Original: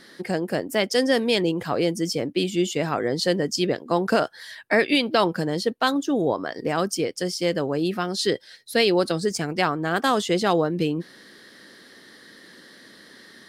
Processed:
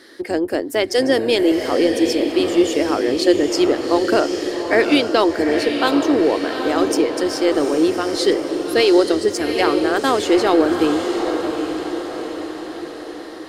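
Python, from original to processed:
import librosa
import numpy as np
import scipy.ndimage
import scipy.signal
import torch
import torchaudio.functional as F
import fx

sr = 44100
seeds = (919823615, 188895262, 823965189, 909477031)

y = fx.octave_divider(x, sr, octaves=1, level_db=-4.0)
y = fx.low_shelf_res(y, sr, hz=230.0, db=-10.0, q=3.0)
y = fx.echo_diffused(y, sr, ms=797, feedback_pct=55, wet_db=-6)
y = y * 10.0 ** (2.0 / 20.0)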